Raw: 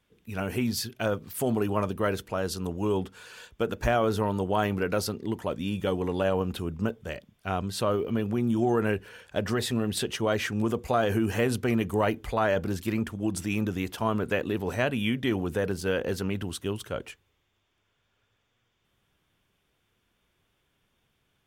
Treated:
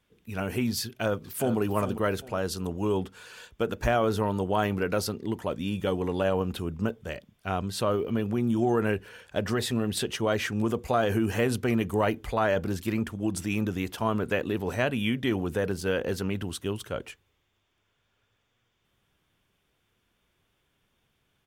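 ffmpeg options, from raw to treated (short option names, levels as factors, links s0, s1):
-filter_complex "[0:a]asplit=2[s0][s1];[s1]afade=t=in:st=0.84:d=0.01,afade=t=out:st=1.58:d=0.01,aecho=0:1:400|800|1200:0.298538|0.0895615|0.0268684[s2];[s0][s2]amix=inputs=2:normalize=0"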